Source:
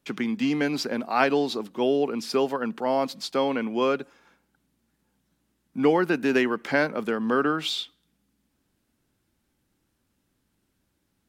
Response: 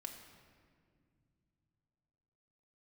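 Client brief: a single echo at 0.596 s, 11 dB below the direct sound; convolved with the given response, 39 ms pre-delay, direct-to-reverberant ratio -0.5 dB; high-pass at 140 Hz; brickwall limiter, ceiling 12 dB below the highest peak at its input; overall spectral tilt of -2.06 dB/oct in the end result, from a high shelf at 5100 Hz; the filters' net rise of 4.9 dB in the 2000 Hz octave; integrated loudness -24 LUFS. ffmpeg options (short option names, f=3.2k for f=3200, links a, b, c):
-filter_complex "[0:a]highpass=140,equalizer=f=2k:t=o:g=6,highshelf=f=5.1k:g=4.5,alimiter=limit=-15dB:level=0:latency=1,aecho=1:1:596:0.282,asplit=2[a][b];[1:a]atrim=start_sample=2205,adelay=39[c];[b][c]afir=irnorm=-1:irlink=0,volume=4.5dB[d];[a][d]amix=inputs=2:normalize=0,volume=-1dB"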